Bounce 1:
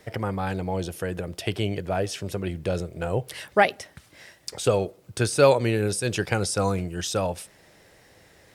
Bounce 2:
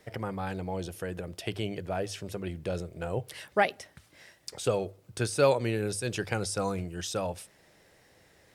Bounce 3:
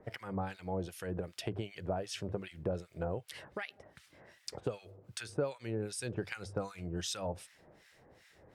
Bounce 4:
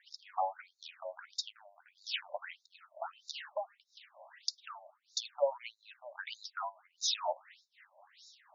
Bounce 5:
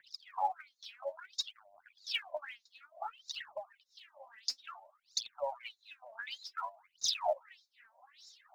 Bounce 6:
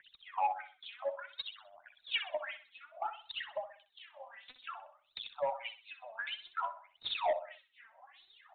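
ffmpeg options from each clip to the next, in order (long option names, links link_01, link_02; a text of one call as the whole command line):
ffmpeg -i in.wav -af "bandreject=frequency=50:width_type=h:width=6,bandreject=frequency=100:width_type=h:width=6,volume=-6dB" out.wav
ffmpeg -i in.wav -filter_complex "[0:a]highshelf=frequency=6400:gain=-8.5,acompressor=threshold=-34dB:ratio=6,acrossover=split=1300[link_01][link_02];[link_01]aeval=exprs='val(0)*(1-1/2+1/2*cos(2*PI*2.6*n/s))':channel_layout=same[link_03];[link_02]aeval=exprs='val(0)*(1-1/2-1/2*cos(2*PI*2.6*n/s))':channel_layout=same[link_04];[link_03][link_04]amix=inputs=2:normalize=0,volume=4dB" out.wav
ffmpeg -i in.wav -filter_complex "[0:a]acrossover=split=180|710|4500[link_01][link_02][link_03][link_04];[link_04]acompressor=mode=upward:threshold=-58dB:ratio=2.5[link_05];[link_01][link_02][link_03][link_05]amix=inputs=4:normalize=0,afftfilt=real='re*between(b*sr/1024,730*pow(5200/730,0.5+0.5*sin(2*PI*1.6*pts/sr))/1.41,730*pow(5200/730,0.5+0.5*sin(2*PI*1.6*pts/sr))*1.41)':imag='im*between(b*sr/1024,730*pow(5200/730,0.5+0.5*sin(2*PI*1.6*pts/sr))/1.41,730*pow(5200/730,0.5+0.5*sin(2*PI*1.6*pts/sr))*1.41)':win_size=1024:overlap=0.75,volume=9dB" out.wav
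ffmpeg -i in.wav -af "aphaser=in_gain=1:out_gain=1:delay=4.6:decay=0.74:speed=0.57:type=triangular,volume=-3dB" out.wav
ffmpeg -i in.wav -af "aecho=1:1:63|126|189|252:0.251|0.0904|0.0326|0.0117,asoftclip=type=tanh:threshold=-28.5dB,aresample=8000,aresample=44100,volume=4dB" out.wav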